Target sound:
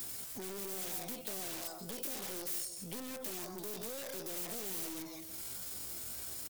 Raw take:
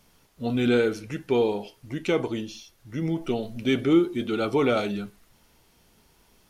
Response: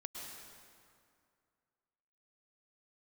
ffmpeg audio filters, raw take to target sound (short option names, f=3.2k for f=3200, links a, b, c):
-filter_complex "[0:a]highshelf=f=2.2k:g=9,asetrate=70004,aresample=44100,atempo=0.629961,aecho=1:1:168|336:0.168|0.0302[a];[1:a]atrim=start_sample=2205,atrim=end_sample=3969,asetrate=37926,aresample=44100[b];[a][b]afir=irnorm=-1:irlink=0,acrossover=split=130[c][d];[d]acompressor=threshold=-32dB:ratio=2.5[e];[c][e]amix=inputs=2:normalize=0,acrossover=split=490[f][g];[g]aeval=exprs='(mod(89.1*val(0)+1,2)-1)/89.1':c=same[h];[f][h]amix=inputs=2:normalize=0,highpass=48,aeval=exprs='(tanh(126*val(0)+0.25)-tanh(0.25))/126':c=same,acompressor=threshold=-60dB:ratio=4,highshelf=f=7k:g=12,volume=13.5dB"